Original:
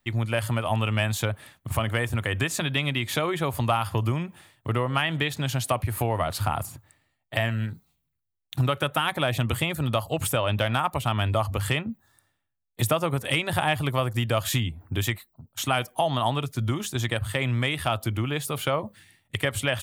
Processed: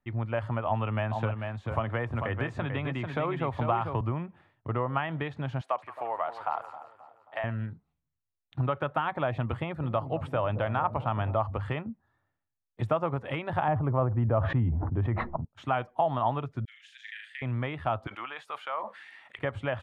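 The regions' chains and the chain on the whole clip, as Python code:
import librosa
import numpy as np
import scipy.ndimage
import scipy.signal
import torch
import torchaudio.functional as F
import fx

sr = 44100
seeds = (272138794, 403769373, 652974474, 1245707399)

y = fx.chain(x, sr, fx.echo_single(ms=443, db=-6.5),
    fx.band_squash(depth_pct=40), at=(0.67, 4.01))
y = fx.chain(y, sr, fx.highpass(hz=630.0, slope=12),
    fx.echo_split(split_hz=1000.0, low_ms=268, high_ms=173, feedback_pct=52, wet_db=-11), at=(5.61, 7.44))
y = fx.chain(y, sr, fx.peak_eq(hz=6800.0, db=-5.5, octaves=0.38),
    fx.echo_wet_lowpass(ms=218, feedback_pct=59, hz=510.0, wet_db=-9.5), at=(9.6, 11.35))
y = fx.chain(y, sr, fx.lowpass(hz=1200.0, slope=12),
    fx.low_shelf(hz=370.0, db=4.5),
    fx.sustainer(db_per_s=21.0), at=(13.68, 15.45))
y = fx.chain(y, sr, fx.steep_highpass(hz=1700.0, slope=72),
    fx.room_flutter(wall_m=6.5, rt60_s=0.35),
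    fx.sustainer(db_per_s=45.0), at=(16.65, 17.42))
y = fx.chain(y, sr, fx.highpass(hz=1100.0, slope=12),
    fx.high_shelf(hz=5500.0, db=4.5),
    fx.env_flatten(amount_pct=70), at=(18.07, 19.39))
y = scipy.signal.sosfilt(scipy.signal.butter(2, 1600.0, 'lowpass', fs=sr, output='sos'), y)
y = fx.dynamic_eq(y, sr, hz=880.0, q=1.0, threshold_db=-39.0, ratio=4.0, max_db=5)
y = y * librosa.db_to_amplitude(-5.5)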